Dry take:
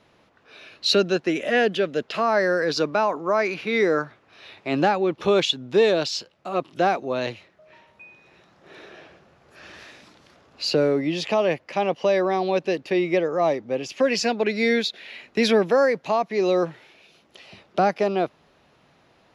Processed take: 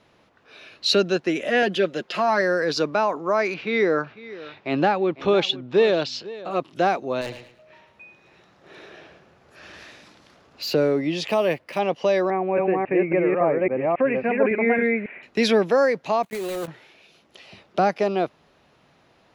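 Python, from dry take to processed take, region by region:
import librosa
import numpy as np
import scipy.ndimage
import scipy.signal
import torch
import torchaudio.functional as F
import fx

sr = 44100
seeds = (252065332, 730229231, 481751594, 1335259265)

y = fx.chain(x, sr, fx.peak_eq(hz=120.0, db=-8.0, octaves=0.79),
    fx.comb(ms=5.6, depth=0.64), at=(1.62, 2.41))
y = fx.chain(y, sr, fx.lowpass(hz=4400.0, slope=12),
    fx.echo_single(ms=500, db=-17.5), at=(3.54, 6.51))
y = fx.chain(y, sr, fx.clip_hard(threshold_db=-26.5),
    fx.echo_feedback(ms=109, feedback_pct=30, wet_db=-11.0), at=(7.21, 10.74))
y = fx.chain(y, sr, fx.high_shelf(hz=4300.0, db=4.0),
    fx.notch(hz=790.0, q=18.0),
    fx.resample_linear(factor=3), at=(11.28, 11.79))
y = fx.chain(y, sr, fx.reverse_delay(ms=276, wet_db=-0.5),
    fx.cheby1_lowpass(hz=2400.0, order=5), at=(12.3, 15.23))
y = fx.chain(y, sr, fx.block_float(bits=3),
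    fx.level_steps(step_db=14),
    fx.peak_eq(hz=5300.0, db=-8.0, octaves=0.28), at=(16.23, 16.68))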